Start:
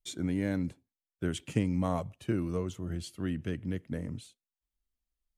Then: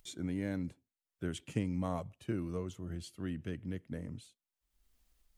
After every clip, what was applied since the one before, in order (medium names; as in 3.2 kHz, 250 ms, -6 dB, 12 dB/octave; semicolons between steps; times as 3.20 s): upward compressor, threshold -47 dBFS; trim -5.5 dB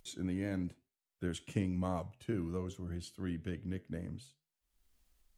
flange 1.1 Hz, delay 8.8 ms, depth 4 ms, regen -81%; vibrato 4.8 Hz 32 cents; trim +4.5 dB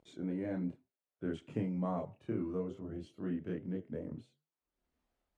chorus voices 2, 0.72 Hz, delay 27 ms, depth 1 ms; band-pass filter 460 Hz, Q 0.62; trim +6 dB